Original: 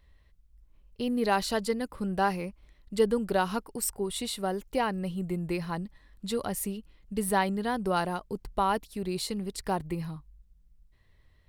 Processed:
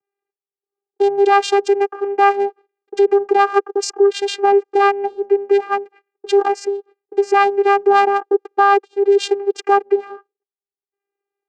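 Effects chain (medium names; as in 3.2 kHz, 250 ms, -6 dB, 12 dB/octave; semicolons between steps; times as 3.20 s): local Wiener filter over 15 samples; gate -49 dBFS, range -29 dB; dynamic bell 260 Hz, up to -6 dB, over -43 dBFS, Q 0.75; vocoder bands 8, saw 400 Hz; loudness maximiser +27 dB; trim -4.5 dB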